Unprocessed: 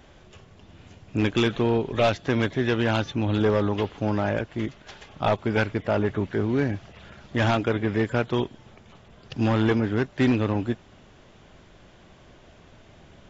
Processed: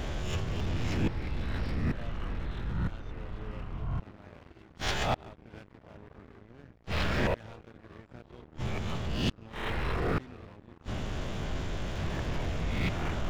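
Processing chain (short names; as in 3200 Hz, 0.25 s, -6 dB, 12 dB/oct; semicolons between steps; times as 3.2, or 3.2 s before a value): spectral swells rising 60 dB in 0.52 s; low shelf 120 Hz +9.5 dB; flipped gate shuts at -23 dBFS, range -40 dB; echoes that change speed 0.478 s, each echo -5 st, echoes 3; sample leveller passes 3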